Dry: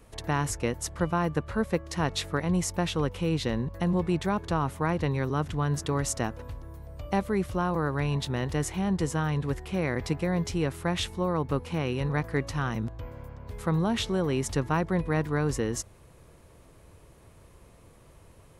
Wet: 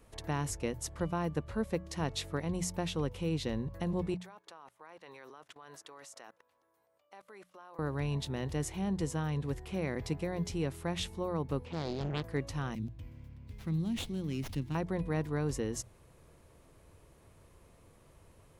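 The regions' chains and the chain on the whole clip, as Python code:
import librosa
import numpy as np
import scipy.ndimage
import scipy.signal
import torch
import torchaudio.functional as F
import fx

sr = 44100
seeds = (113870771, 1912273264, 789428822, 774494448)

y = fx.chain(x, sr, fx.highpass(hz=590.0, slope=12),
    fx.level_steps(step_db=23), at=(4.14, 7.79))
y = fx.chain(y, sr, fx.lowpass(hz=3600.0, slope=12),
    fx.doppler_dist(depth_ms=0.95), at=(11.65, 12.23))
y = fx.chain(y, sr, fx.highpass(hz=44.0, slope=12),
    fx.band_shelf(hz=820.0, db=-15.0, octaves=2.3),
    fx.running_max(window=5), at=(12.75, 14.75))
y = fx.hum_notches(y, sr, base_hz=60, count=3)
y = fx.dynamic_eq(y, sr, hz=1400.0, q=1.1, threshold_db=-46.0, ratio=4.0, max_db=-5)
y = y * librosa.db_to_amplitude(-5.5)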